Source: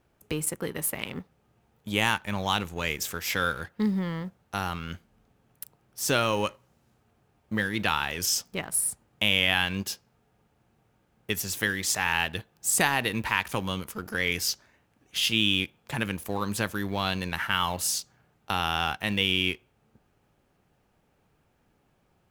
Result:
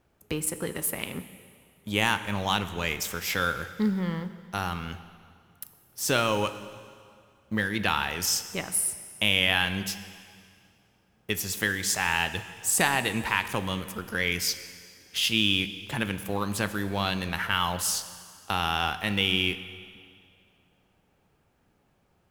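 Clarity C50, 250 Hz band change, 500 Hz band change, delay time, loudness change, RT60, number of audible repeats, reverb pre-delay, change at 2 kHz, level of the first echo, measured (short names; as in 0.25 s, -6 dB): 12.5 dB, +0.5 dB, +0.5 dB, none, +0.5 dB, 2.2 s, none, 4 ms, +0.5 dB, none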